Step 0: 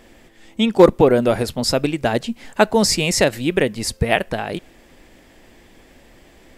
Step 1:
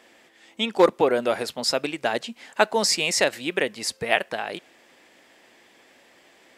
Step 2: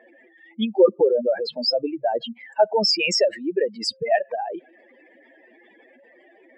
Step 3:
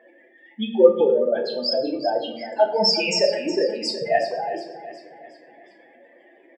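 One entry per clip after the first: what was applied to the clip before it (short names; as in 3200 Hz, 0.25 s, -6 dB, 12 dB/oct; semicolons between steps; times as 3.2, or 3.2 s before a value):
weighting filter A; gain -3 dB
spectral contrast raised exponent 3.7; gain +3 dB
feedback echo 0.366 s, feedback 46%, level -13 dB; reverb RT60 0.65 s, pre-delay 6 ms, DRR 1 dB; gain -2.5 dB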